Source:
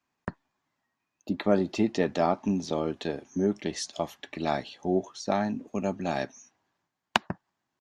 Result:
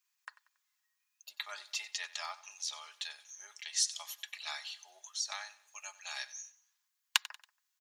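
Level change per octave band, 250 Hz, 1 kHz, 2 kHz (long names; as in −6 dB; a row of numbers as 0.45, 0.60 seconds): below −40 dB, −15.5 dB, −4.0 dB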